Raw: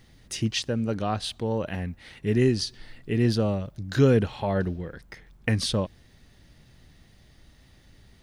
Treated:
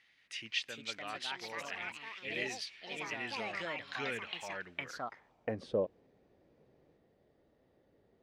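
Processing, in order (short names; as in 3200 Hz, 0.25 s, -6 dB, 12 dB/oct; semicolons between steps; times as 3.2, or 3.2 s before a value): echoes that change speed 0.439 s, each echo +4 st, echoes 3; band-pass sweep 2300 Hz -> 480 Hz, 4.6–5.65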